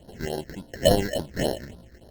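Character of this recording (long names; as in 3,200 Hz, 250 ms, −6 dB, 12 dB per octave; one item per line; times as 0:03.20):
aliases and images of a low sample rate 1,200 Hz, jitter 0%
phaser sweep stages 6, 3.5 Hz, lowest notch 780–2,300 Hz
Opus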